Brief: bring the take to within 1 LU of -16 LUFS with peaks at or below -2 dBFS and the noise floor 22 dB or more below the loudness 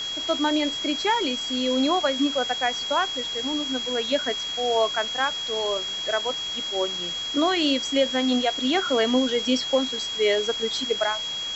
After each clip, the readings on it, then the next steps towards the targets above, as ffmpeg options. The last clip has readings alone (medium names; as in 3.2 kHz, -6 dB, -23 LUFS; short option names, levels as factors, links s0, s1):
steady tone 3.3 kHz; tone level -28 dBFS; noise floor -31 dBFS; noise floor target -46 dBFS; loudness -23.5 LUFS; peak level -10.0 dBFS; loudness target -16.0 LUFS
-> -af "bandreject=f=3300:w=30"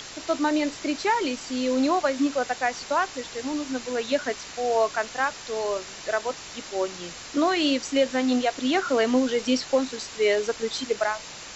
steady tone not found; noise floor -41 dBFS; noise floor target -48 dBFS
-> -af "afftdn=nr=7:nf=-41"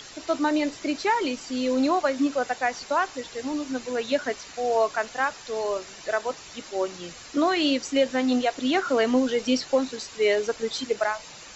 noise floor -44 dBFS; noise floor target -48 dBFS
-> -af "afftdn=nr=6:nf=-44"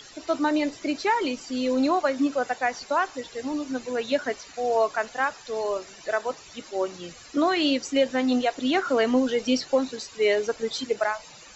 noise floor -47 dBFS; noise floor target -48 dBFS
-> -af "afftdn=nr=6:nf=-47"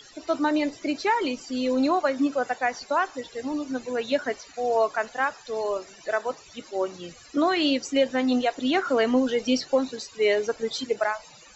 noise floor -50 dBFS; loudness -26.0 LUFS; peak level -11.0 dBFS; loudness target -16.0 LUFS
-> -af "volume=3.16,alimiter=limit=0.794:level=0:latency=1"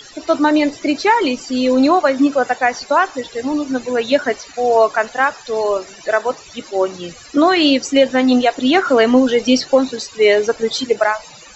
loudness -16.0 LUFS; peak level -2.0 dBFS; noise floor -40 dBFS